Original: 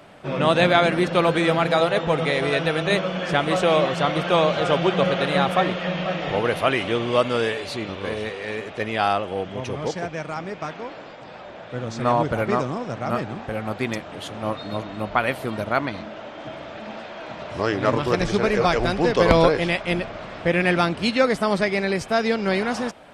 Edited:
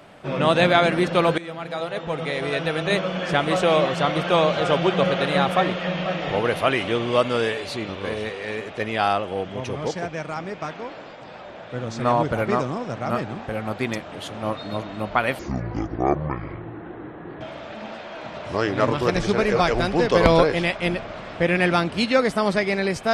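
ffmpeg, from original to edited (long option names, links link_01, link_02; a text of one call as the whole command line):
ffmpeg -i in.wav -filter_complex "[0:a]asplit=4[link_01][link_02][link_03][link_04];[link_01]atrim=end=1.38,asetpts=PTS-STARTPTS,afade=type=out:start_time=1.376:duration=0.004:curve=hsin:silence=0.133352[link_05];[link_02]atrim=start=1.38:end=15.394,asetpts=PTS-STARTPTS,afade=type=in:duration=1.75:silence=0.133352[link_06];[link_03]atrim=start=15.39:end=16.46,asetpts=PTS-STARTPTS,asetrate=23373,aresample=44100,atrim=end_sample=89032,asetpts=PTS-STARTPTS[link_07];[link_04]atrim=start=16.456[link_08];[link_05][link_06]concat=n=2:v=0:a=1[link_09];[link_09][link_07]acrossfade=duration=0.004:curve1=hsin:curve2=hsin[link_10];[link_10][link_08]acrossfade=duration=0.004:curve1=hsin:curve2=hsin" out.wav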